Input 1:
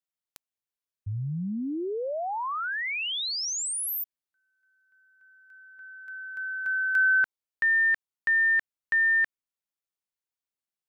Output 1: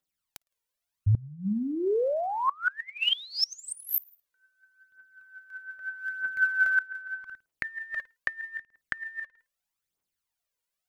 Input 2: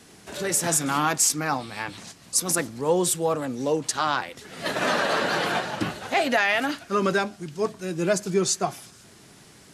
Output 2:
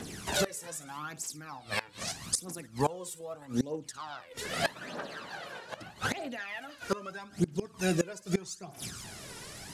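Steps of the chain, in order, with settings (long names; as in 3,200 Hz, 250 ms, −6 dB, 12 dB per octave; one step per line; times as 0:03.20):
flutter between parallel walls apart 9.3 metres, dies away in 0.22 s
phase shifter 0.8 Hz, delay 2.2 ms, feedback 64%
gate with flip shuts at −19 dBFS, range −24 dB
level +4 dB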